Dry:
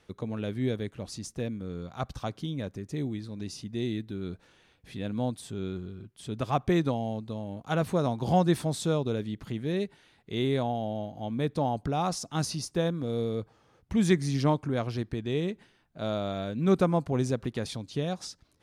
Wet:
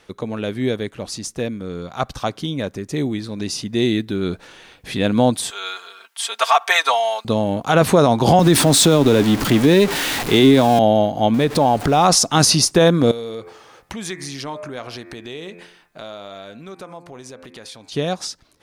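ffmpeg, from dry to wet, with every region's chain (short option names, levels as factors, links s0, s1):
-filter_complex "[0:a]asettb=1/sr,asplit=3[s0][s1][s2];[s0]atrim=end=5.504[s3];[s1]atrim=start=5.5:end=7.25,asetpts=PTS-STARTPTS,afade=t=in:d=0.004:c=qsin,afade=t=out:st=1.746:d=0.004:c=qsin,highpass=f=800:w=0.5412,highpass=f=800:w=1.3066,aecho=1:1:4.4:0.86,atrim=end_sample=77175[s4];[s2]atrim=start=7.246[s5];[s3][s4]acrossfade=d=0.004:c1=hsin:c2=qsin[s6];[s6][s5]acrossfade=d=0.004:c1=qsin:c2=hsin,asettb=1/sr,asplit=3[s7][s8][s9];[s7]atrim=end=8.394[s10];[s8]atrim=start=8.39:end=10.79,asetpts=PTS-STARTPTS,afade=t=in:d=0.004:c=qsin,afade=t=out:st=2.396:d=0.004:c=qsin,aeval=exprs='val(0)+0.5*0.0126*sgn(val(0))':c=same,equalizer=f=280:t=o:w=0.22:g=8,acrossover=split=300|3000[s11][s12][s13];[s12]acompressor=threshold=0.0447:ratio=6:attack=3.2:release=140:knee=2.83:detection=peak[s14];[s11][s14][s13]amix=inputs=3:normalize=0[s15];[s9]atrim=start=10.786[s16];[s10][s15]acrossfade=d=0.004:c1=hsin:c2=qsin[s17];[s17][s16]acrossfade=d=0.004:c1=qsin:c2=hsin,asettb=1/sr,asplit=3[s18][s19][s20];[s18]atrim=end=11.344[s21];[s19]atrim=start=11.34:end=12.05,asetpts=PTS-STARTPTS,afade=t=in:d=0.004:c=qsin,afade=t=out:st=0.706:d=0.004:c=qsin,aeval=exprs='val(0)+0.5*0.00596*sgn(val(0))':c=same,acompressor=threshold=0.0282:ratio=4:attack=3.2:release=140:knee=1:detection=peak[s22];[s20]atrim=start=12.046[s23];[s21][s22]acrossfade=d=0.004:c1=hsin:c2=qsin[s24];[s24][s23]acrossfade=d=0.004:c1=qsin:c2=hsin,asettb=1/sr,asplit=3[s25][s26][s27];[s25]atrim=end=13.114[s28];[s26]atrim=start=13.11:end=17.92,asetpts=PTS-STARTPTS,afade=t=in:d=0.004:c=qsin,afade=t=out:st=4.806:d=0.004:c=qsin,lowshelf=f=420:g=-9.5,bandreject=f=86.9:t=h:w=4,bandreject=f=173.8:t=h:w=4,bandreject=f=260.7:t=h:w=4,bandreject=f=347.6:t=h:w=4,bandreject=f=434.5:t=h:w=4,bandreject=f=521.4:t=h:w=4,bandreject=f=608.3:t=h:w=4,bandreject=f=695.2:t=h:w=4,bandreject=f=782.1:t=h:w=4,bandreject=f=869:t=h:w=4,bandreject=f=955.9:t=h:w=4,bandreject=f=1042.8:t=h:w=4,bandreject=f=1129.7:t=h:w=4,bandreject=f=1216.6:t=h:w=4,bandreject=f=1303.5:t=h:w=4,bandreject=f=1390.4:t=h:w=4,bandreject=f=1477.3:t=h:w=4,bandreject=f=1564.2:t=h:w=4,bandreject=f=1651.1:t=h:w=4,bandreject=f=1738:t=h:w=4,bandreject=f=1824.9:t=h:w=4,bandreject=f=1911.8:t=h:w=4,bandreject=f=1998.7:t=h:w=4,bandreject=f=2085.6:t=h:w=4,bandreject=f=2172.5:t=h:w=4,bandreject=f=2259.4:t=h:w=4,bandreject=f=2346.3:t=h:w=4,bandreject=f=2433.2:t=h:w=4,bandreject=f=2520.1:t=h:w=4,bandreject=f=2607:t=h:w=4,acompressor=threshold=0.00447:ratio=4:attack=3.2:release=140:knee=1:detection=peak[s29];[s27]atrim=start=17.916[s30];[s28][s29]acrossfade=d=0.004:c1=hsin:c2=qsin[s31];[s31][s30]acrossfade=d=0.004:c1=qsin:c2=hsin,dynaudnorm=f=400:g=21:m=3.76,equalizer=f=79:w=0.37:g=-9,alimiter=level_in=5.62:limit=0.891:release=50:level=0:latency=1,volume=0.708"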